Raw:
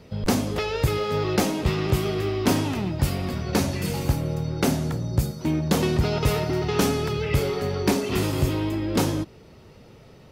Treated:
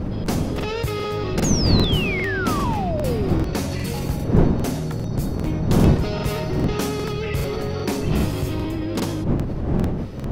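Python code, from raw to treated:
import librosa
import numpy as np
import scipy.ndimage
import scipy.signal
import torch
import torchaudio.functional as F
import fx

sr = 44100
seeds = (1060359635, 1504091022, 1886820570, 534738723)

p1 = fx.dmg_wind(x, sr, seeds[0], corner_hz=220.0, level_db=-20.0)
p2 = fx.over_compress(p1, sr, threshold_db=-32.0, ratio=-1.0)
p3 = p1 + F.gain(torch.from_numpy(p2), -2.0).numpy()
p4 = fx.spec_paint(p3, sr, seeds[1], shape='fall', start_s=1.42, length_s=1.99, low_hz=300.0, high_hz=7100.0, level_db=-23.0)
p5 = fx.buffer_crackle(p4, sr, first_s=0.55, period_s=0.4, block=2048, kind='repeat')
y = F.gain(torch.from_numpy(p5), -4.0).numpy()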